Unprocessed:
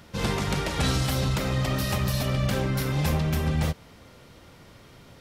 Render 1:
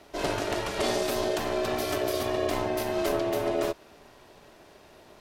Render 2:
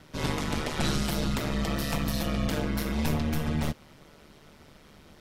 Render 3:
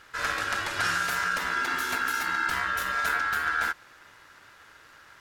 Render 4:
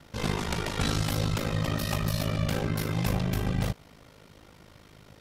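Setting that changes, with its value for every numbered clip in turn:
ring modulator, frequency: 500 Hz, 75 Hz, 1.5 kHz, 26 Hz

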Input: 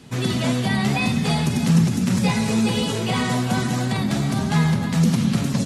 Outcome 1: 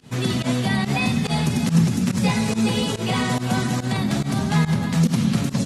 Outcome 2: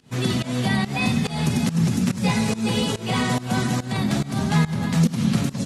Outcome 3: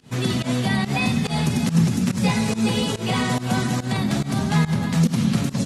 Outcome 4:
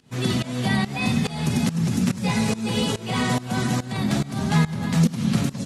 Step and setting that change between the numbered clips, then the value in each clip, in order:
volume shaper, release: 87 ms, 240 ms, 132 ms, 358 ms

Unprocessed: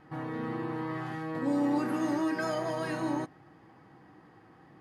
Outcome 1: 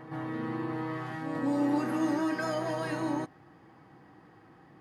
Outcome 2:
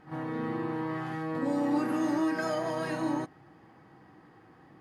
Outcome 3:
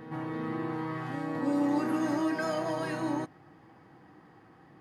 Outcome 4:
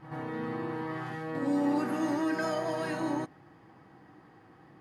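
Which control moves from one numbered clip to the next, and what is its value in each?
reverse echo, time: 204 ms, 44 ms, 327 ms, 90 ms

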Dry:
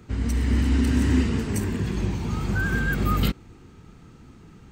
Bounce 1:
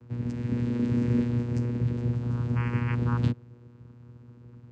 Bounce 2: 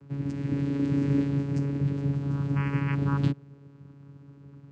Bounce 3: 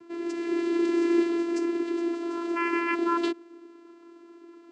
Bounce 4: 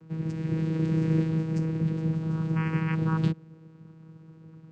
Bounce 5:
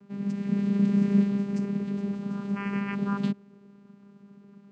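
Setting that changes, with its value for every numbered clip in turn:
vocoder, frequency: 120 Hz, 140 Hz, 340 Hz, 160 Hz, 200 Hz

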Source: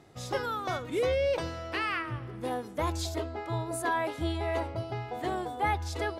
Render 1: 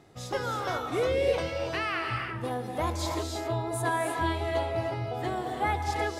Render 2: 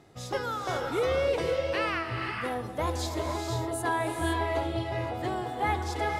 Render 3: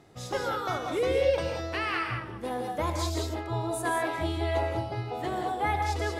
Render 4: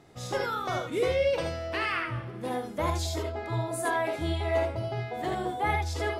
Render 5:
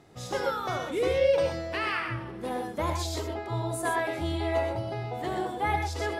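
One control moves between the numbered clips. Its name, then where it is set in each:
gated-style reverb, gate: 350 ms, 540 ms, 220 ms, 100 ms, 150 ms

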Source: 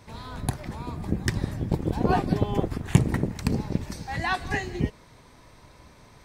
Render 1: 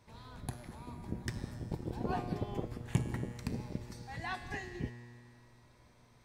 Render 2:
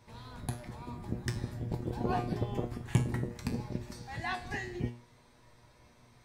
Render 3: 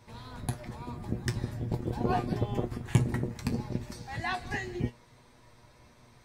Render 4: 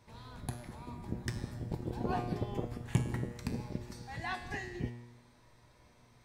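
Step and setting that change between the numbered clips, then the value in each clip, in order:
feedback comb, decay: 2.1 s, 0.38 s, 0.15 s, 0.95 s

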